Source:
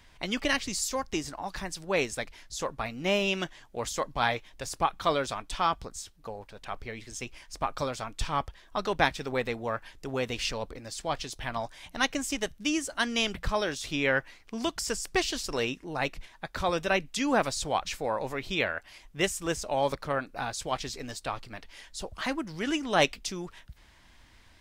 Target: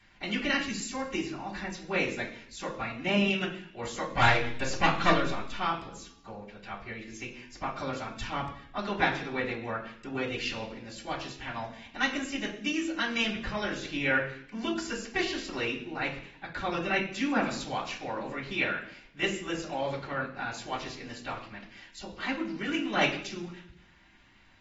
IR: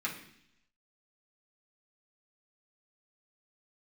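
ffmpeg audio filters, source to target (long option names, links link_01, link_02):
-filter_complex "[0:a]asettb=1/sr,asplit=3[link_01][link_02][link_03];[link_01]atrim=end=4.114[link_04];[link_02]atrim=start=4.11:end=5.12,asetpts=PTS-STARTPTS,afade=type=in:duration=0.004:curve=qsin,afade=type=out:start_time=1.006:duration=0.004:curve=qsin,aeval=exprs='0.299*(cos(1*acos(clip(val(0)/0.299,-1,1)))-cos(1*PI/2))+0.0841*(cos(5*acos(clip(val(0)/0.299,-1,1)))-cos(5*PI/2))+0.0841*(cos(6*acos(clip(val(0)/0.299,-1,1)))-cos(6*PI/2))+0.00168*(cos(8*acos(clip(val(0)/0.299,-1,1)))-cos(8*PI/2))':channel_layout=same[link_05];[link_03]atrim=start=5.116[link_06];[link_04][link_05]acrossfade=duration=0.004:curve1=hsin:curve2=qsin[link_07];[link_07][link_06]acrossfade=duration=0.004:curve1=qsin:curve2=hsin[link_08];[1:a]atrim=start_sample=2205,asetrate=48510,aresample=44100[link_09];[link_08][link_09]afir=irnorm=-1:irlink=0,volume=-4.5dB" -ar 48000 -c:a aac -b:a 24k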